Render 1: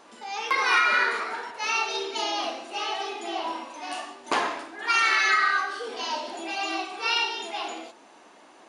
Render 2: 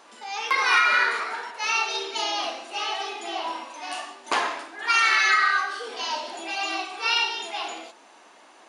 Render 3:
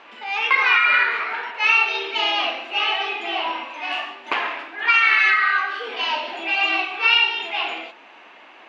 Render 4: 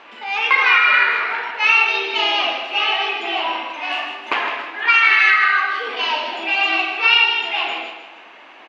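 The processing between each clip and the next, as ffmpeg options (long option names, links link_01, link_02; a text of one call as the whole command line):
ffmpeg -i in.wav -af "lowshelf=frequency=430:gain=-9.5,volume=2.5dB" out.wav
ffmpeg -i in.wav -af "alimiter=limit=-14.5dB:level=0:latency=1:release=499,lowpass=frequency=2600:width_type=q:width=2.7,volume=3.5dB" out.wav
ffmpeg -i in.wav -af "aecho=1:1:156|312|468|624:0.355|0.131|0.0486|0.018,volume=2.5dB" out.wav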